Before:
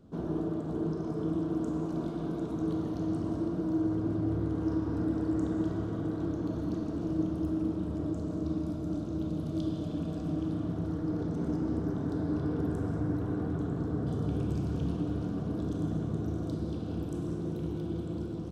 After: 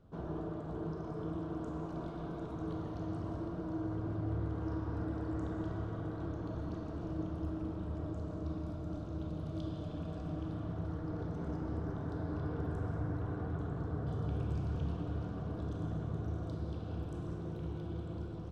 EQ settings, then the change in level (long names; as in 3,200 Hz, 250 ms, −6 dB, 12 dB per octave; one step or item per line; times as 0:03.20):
low-pass filter 1,800 Hz 6 dB per octave
parametric band 260 Hz −12.5 dB 1.8 octaves
+1.5 dB